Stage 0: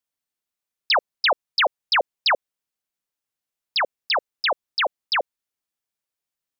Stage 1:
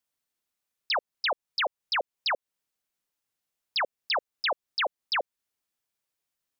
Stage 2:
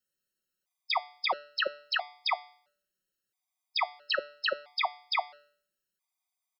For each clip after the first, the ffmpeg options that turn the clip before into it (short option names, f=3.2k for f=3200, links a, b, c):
-af "alimiter=level_in=0.5dB:limit=-24dB:level=0:latency=1:release=214,volume=-0.5dB,volume=2dB"
-af "aecho=1:1:5.4:0.59,bandreject=f=146.1:t=h:w=4,bandreject=f=292.2:t=h:w=4,bandreject=f=438.3:t=h:w=4,bandreject=f=584.4:t=h:w=4,bandreject=f=730.5:t=h:w=4,bandreject=f=876.6:t=h:w=4,bandreject=f=1.0227k:t=h:w=4,bandreject=f=1.1688k:t=h:w=4,bandreject=f=1.3149k:t=h:w=4,bandreject=f=1.461k:t=h:w=4,bandreject=f=1.6071k:t=h:w=4,bandreject=f=1.7532k:t=h:w=4,bandreject=f=1.8993k:t=h:w=4,bandreject=f=2.0454k:t=h:w=4,bandreject=f=2.1915k:t=h:w=4,bandreject=f=2.3376k:t=h:w=4,bandreject=f=2.4837k:t=h:w=4,bandreject=f=2.6298k:t=h:w=4,bandreject=f=2.7759k:t=h:w=4,bandreject=f=2.922k:t=h:w=4,bandreject=f=3.0681k:t=h:w=4,bandreject=f=3.2142k:t=h:w=4,bandreject=f=3.3603k:t=h:w=4,bandreject=f=3.5064k:t=h:w=4,bandreject=f=3.6525k:t=h:w=4,bandreject=f=3.7986k:t=h:w=4,bandreject=f=3.9447k:t=h:w=4,bandreject=f=4.0908k:t=h:w=4,bandreject=f=4.2369k:t=h:w=4,bandreject=f=4.383k:t=h:w=4,bandreject=f=4.5291k:t=h:w=4,bandreject=f=4.6752k:t=h:w=4,bandreject=f=4.8213k:t=h:w=4,bandreject=f=4.9674k:t=h:w=4,bandreject=f=5.1135k:t=h:w=4,bandreject=f=5.2596k:t=h:w=4,bandreject=f=5.4057k:t=h:w=4,bandreject=f=5.5518k:t=h:w=4,bandreject=f=5.6979k:t=h:w=4,afftfilt=real='re*gt(sin(2*PI*0.75*pts/sr)*(1-2*mod(floor(b*sr/1024/640),2)),0)':imag='im*gt(sin(2*PI*0.75*pts/sr)*(1-2*mod(floor(b*sr/1024/640),2)),0)':win_size=1024:overlap=0.75"